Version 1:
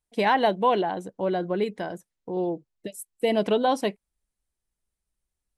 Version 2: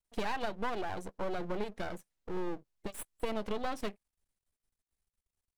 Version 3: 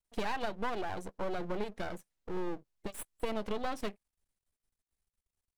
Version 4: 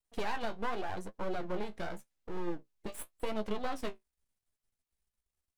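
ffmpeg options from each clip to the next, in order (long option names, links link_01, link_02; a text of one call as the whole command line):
ffmpeg -i in.wav -af "aeval=exprs='max(val(0),0)':channel_layout=same,acompressor=threshold=-30dB:ratio=6" out.wav
ffmpeg -i in.wav -af anull out.wav
ffmpeg -i in.wav -af "flanger=delay=9.2:depth=9.4:regen=41:speed=0.87:shape=sinusoidal,volume=3dB" out.wav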